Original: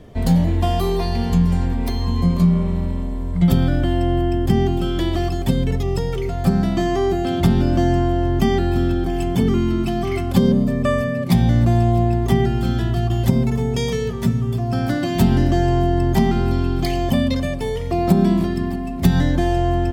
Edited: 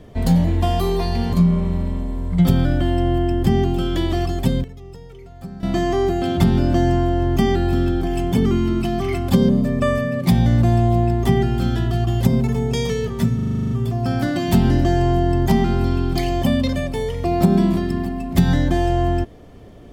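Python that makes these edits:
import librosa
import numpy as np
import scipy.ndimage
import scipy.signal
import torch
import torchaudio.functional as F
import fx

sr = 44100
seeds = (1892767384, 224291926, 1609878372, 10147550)

y = fx.edit(x, sr, fx.cut(start_s=1.33, length_s=1.03),
    fx.fade_down_up(start_s=5.4, length_s=1.53, db=-17.0, fade_s=0.27, curve='log'),
    fx.stutter(start_s=14.38, slice_s=0.04, count=10), tone=tone)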